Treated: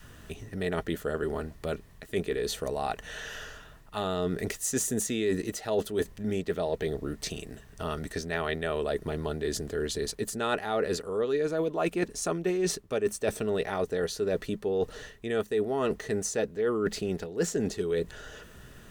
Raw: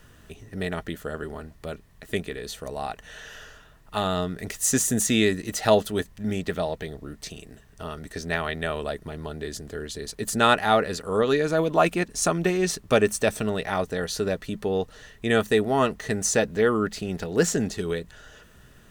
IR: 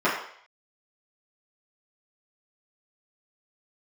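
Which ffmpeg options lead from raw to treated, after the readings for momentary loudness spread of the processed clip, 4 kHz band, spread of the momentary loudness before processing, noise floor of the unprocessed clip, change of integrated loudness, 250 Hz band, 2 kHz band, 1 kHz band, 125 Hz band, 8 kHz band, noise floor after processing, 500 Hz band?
11 LU, −6.5 dB, 17 LU, −53 dBFS, −5.5 dB, −5.0 dB, −7.5 dB, −8.5 dB, −5.5 dB, −6.5 dB, −52 dBFS, −3.5 dB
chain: -af "adynamicequalizer=threshold=0.0141:dfrequency=410:dqfactor=1.8:tfrequency=410:tqfactor=1.8:attack=5:release=100:ratio=0.375:range=4:mode=boostabove:tftype=bell,areverse,acompressor=threshold=-29dB:ratio=6,areverse,volume=2.5dB"

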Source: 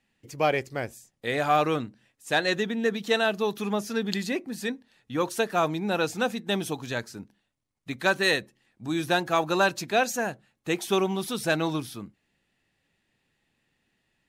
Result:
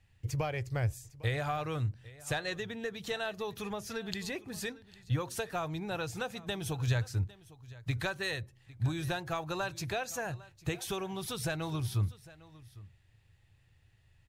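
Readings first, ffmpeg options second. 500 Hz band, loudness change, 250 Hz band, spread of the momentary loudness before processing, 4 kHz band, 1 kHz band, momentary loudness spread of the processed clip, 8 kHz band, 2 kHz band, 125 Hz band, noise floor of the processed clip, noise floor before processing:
−11.5 dB, −9.0 dB, −10.5 dB, 15 LU, −9.0 dB, −11.5 dB, 9 LU, −5.5 dB, −10.5 dB, +3.5 dB, −66 dBFS, −76 dBFS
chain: -af "acompressor=threshold=-32dB:ratio=6,lowshelf=frequency=150:width_type=q:width=3:gain=14,aecho=1:1:804:0.1"

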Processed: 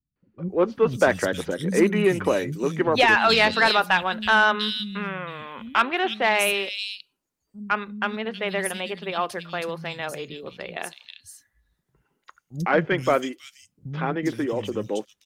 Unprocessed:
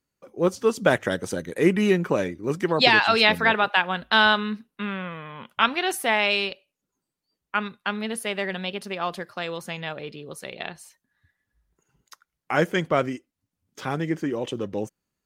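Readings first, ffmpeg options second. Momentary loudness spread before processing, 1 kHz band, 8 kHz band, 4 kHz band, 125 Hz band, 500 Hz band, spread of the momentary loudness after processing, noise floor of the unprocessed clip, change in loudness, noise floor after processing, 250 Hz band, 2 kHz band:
17 LU, +1.5 dB, +2.5 dB, −1.0 dB, 0.0 dB, +1.5 dB, 17 LU, −84 dBFS, +0.5 dB, −79 dBFS, 0.0 dB, +1.0 dB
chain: -filter_complex "[0:a]acrossover=split=210|3400[link_01][link_02][link_03];[link_02]adelay=160[link_04];[link_03]adelay=480[link_05];[link_01][link_04][link_05]amix=inputs=3:normalize=0,aeval=exprs='0.596*(cos(1*acos(clip(val(0)/0.596,-1,1)))-cos(1*PI/2))+0.0422*(cos(5*acos(clip(val(0)/0.596,-1,1)))-cos(5*PI/2))':channel_layout=same"

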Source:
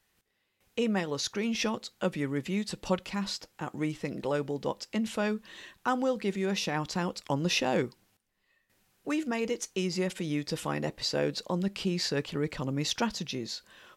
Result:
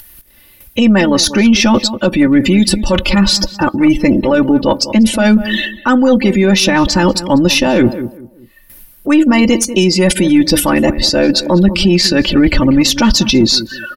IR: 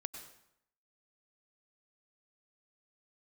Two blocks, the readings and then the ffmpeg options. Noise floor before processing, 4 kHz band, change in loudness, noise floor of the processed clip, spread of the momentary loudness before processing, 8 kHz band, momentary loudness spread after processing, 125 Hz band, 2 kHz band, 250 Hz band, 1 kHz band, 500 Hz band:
−76 dBFS, +21.0 dB, +20.5 dB, −44 dBFS, 6 LU, +20.5 dB, 4 LU, +18.0 dB, +19.5 dB, +23.0 dB, +16.5 dB, +17.5 dB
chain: -filter_complex "[0:a]aecho=1:1:3.4:0.76,afftdn=noise_reduction=27:noise_floor=-44,areverse,acompressor=threshold=-38dB:ratio=12,areverse,asplit=2[link_01][link_02];[link_02]adelay=192,lowpass=frequency=1200:poles=1,volume=-13dB,asplit=2[link_03][link_04];[link_04]adelay=192,lowpass=frequency=1200:poles=1,volume=0.23,asplit=2[link_05][link_06];[link_06]adelay=192,lowpass=frequency=1200:poles=1,volume=0.23[link_07];[link_01][link_03][link_05][link_07]amix=inputs=4:normalize=0,aexciter=amount=11.3:drive=2.7:freq=10000,aemphasis=mode=reproduction:type=bsi,crystalizer=i=4:c=0,acompressor=mode=upward:threshold=-54dB:ratio=2.5,aeval=exprs='0.0668*(cos(1*acos(clip(val(0)/0.0668,-1,1)))-cos(1*PI/2))+0.00841*(cos(2*acos(clip(val(0)/0.0668,-1,1)))-cos(2*PI/2))+0.00119*(cos(5*acos(clip(val(0)/0.0668,-1,1)))-cos(5*PI/2))':channel_layout=same,alimiter=level_in=29dB:limit=-1dB:release=50:level=0:latency=1,volume=-1dB"

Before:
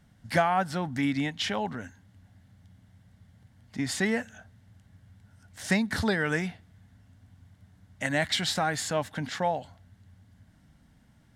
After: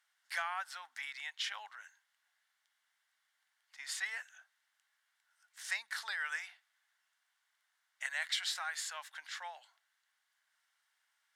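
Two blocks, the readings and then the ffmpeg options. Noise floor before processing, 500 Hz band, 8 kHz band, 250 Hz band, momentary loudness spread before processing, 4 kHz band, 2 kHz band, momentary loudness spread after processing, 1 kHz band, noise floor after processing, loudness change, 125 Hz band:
−61 dBFS, −27.5 dB, −7.0 dB, below −40 dB, 10 LU, −7.0 dB, −7.0 dB, 16 LU, −14.5 dB, −82 dBFS, −10.5 dB, below −40 dB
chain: -af "highpass=frequency=1100:width=0.5412,highpass=frequency=1100:width=1.3066,volume=-7dB"

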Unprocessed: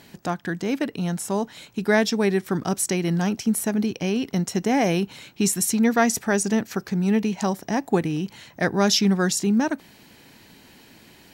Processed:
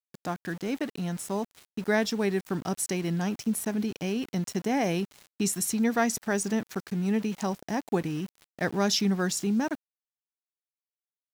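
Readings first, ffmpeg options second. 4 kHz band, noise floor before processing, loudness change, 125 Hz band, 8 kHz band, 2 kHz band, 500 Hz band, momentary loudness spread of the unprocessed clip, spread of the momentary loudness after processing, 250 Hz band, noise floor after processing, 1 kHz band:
−6.0 dB, −52 dBFS, −6.0 dB, −6.0 dB, −6.0 dB, −6.0 dB, −6.0 dB, 9 LU, 9 LU, −6.0 dB, below −85 dBFS, −6.0 dB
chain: -af "aeval=exprs='val(0)*gte(abs(val(0)),0.0168)':channel_layout=same,volume=-6dB"

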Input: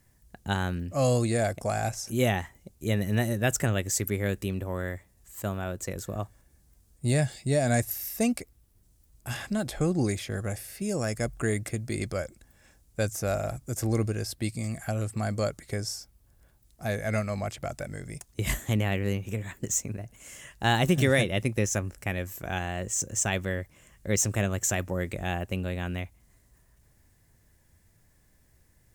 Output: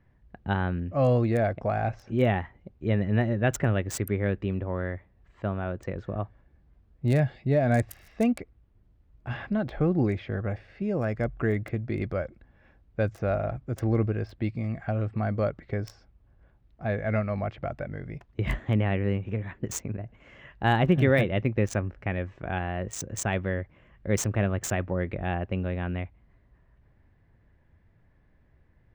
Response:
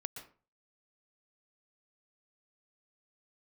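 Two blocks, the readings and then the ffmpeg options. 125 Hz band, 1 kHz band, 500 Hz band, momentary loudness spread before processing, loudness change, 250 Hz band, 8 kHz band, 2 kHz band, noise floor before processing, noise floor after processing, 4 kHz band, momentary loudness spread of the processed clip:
+2.0 dB, +1.5 dB, +2.0 dB, 12 LU, +1.0 dB, +2.0 dB, −9.0 dB, −1.0 dB, −63 dBFS, −63 dBFS, −7.0 dB, 11 LU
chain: -filter_complex "[0:a]acrossover=split=3500[link_01][link_02];[link_02]acrusher=bits=3:mix=0:aa=0.5[link_03];[link_01][link_03]amix=inputs=2:normalize=0,highshelf=frequency=3600:gain=-10.5,volume=2dB"

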